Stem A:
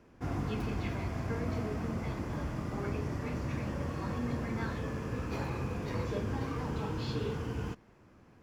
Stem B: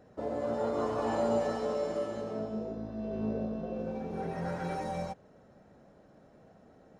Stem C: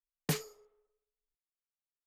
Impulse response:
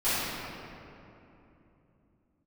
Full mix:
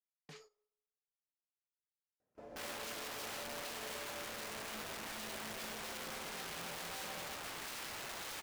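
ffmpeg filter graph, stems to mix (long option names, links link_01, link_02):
-filter_complex "[0:a]aeval=exprs='(mod(75*val(0)+1,2)-1)/75':channel_layout=same,adelay=2350,volume=0.5dB[link_01];[1:a]alimiter=level_in=4dB:limit=-24dB:level=0:latency=1:release=204,volume=-4dB,adelay=2200,volume=-12.5dB[link_02];[2:a]lowpass=5100,acompressor=threshold=-35dB:ratio=2,volume=-8dB[link_03];[link_01][link_03]amix=inputs=2:normalize=0,alimiter=level_in=16dB:limit=-24dB:level=0:latency=1:release=86,volume=-16dB,volume=0dB[link_04];[link_02][link_04]amix=inputs=2:normalize=0,agate=range=-14dB:threshold=-58dB:ratio=16:detection=peak,lowshelf=frequency=340:gain=-7.5"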